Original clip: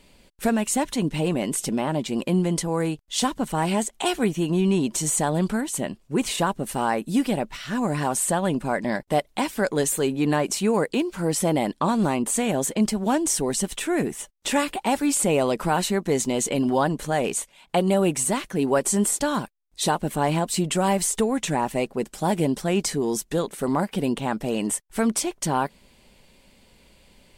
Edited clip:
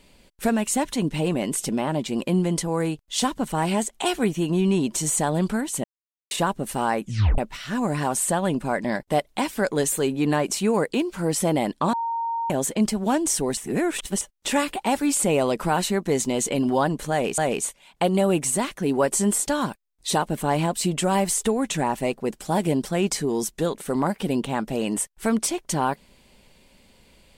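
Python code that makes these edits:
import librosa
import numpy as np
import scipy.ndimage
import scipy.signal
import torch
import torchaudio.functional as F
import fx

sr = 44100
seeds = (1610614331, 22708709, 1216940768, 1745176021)

y = fx.edit(x, sr, fx.silence(start_s=5.84, length_s=0.47),
    fx.tape_stop(start_s=7.01, length_s=0.37),
    fx.bleep(start_s=11.93, length_s=0.57, hz=923.0, db=-23.5),
    fx.reverse_span(start_s=13.57, length_s=0.64),
    fx.repeat(start_s=17.11, length_s=0.27, count=2), tone=tone)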